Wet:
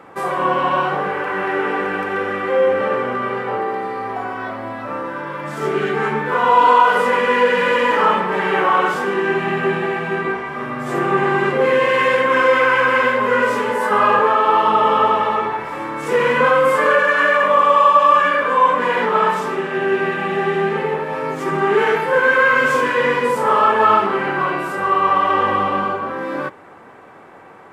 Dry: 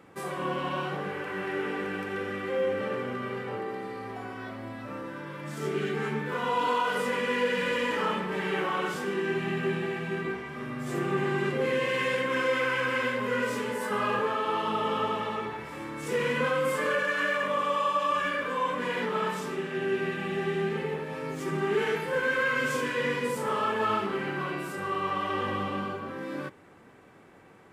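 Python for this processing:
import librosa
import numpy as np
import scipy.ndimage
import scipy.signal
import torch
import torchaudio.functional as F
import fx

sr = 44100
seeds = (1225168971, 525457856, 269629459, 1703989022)

y = fx.peak_eq(x, sr, hz=920.0, db=12.5, octaves=2.5)
y = F.gain(torch.from_numpy(y), 4.0).numpy()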